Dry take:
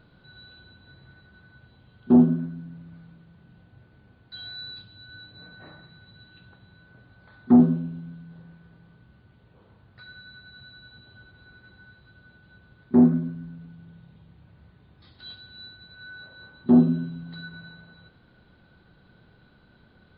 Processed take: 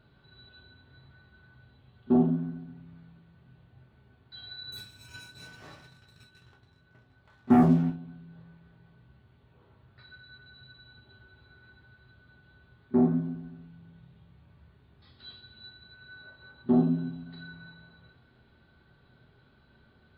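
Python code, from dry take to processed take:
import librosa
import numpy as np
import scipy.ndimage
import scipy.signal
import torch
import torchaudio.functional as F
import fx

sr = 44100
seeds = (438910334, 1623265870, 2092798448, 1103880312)

y = fx.echo_feedback(x, sr, ms=139, feedback_pct=54, wet_db=-20)
y = fx.leveller(y, sr, passes=2, at=(4.72, 7.9))
y = fx.rev_gated(y, sr, seeds[0], gate_ms=90, shape='falling', drr_db=-0.5)
y = y * 10.0 ** (-6.5 / 20.0)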